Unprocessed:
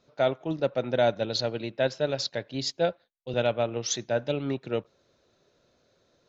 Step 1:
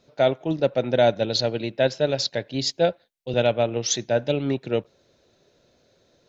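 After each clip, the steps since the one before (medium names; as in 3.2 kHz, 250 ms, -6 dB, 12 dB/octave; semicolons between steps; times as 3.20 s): peaking EQ 1.2 kHz -6 dB 0.6 oct; trim +5.5 dB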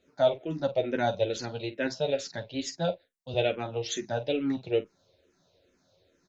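on a send: early reflections 11 ms -5.5 dB, 49 ms -13.5 dB; on the sum: barber-pole phaser -2.3 Hz; trim -4 dB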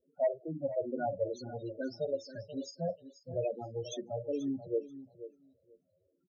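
in parallel at -8 dB: integer overflow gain 15 dB; on the sum: loudest bins only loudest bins 8; feedback delay 484 ms, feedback 15%, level -13.5 dB; trim -8.5 dB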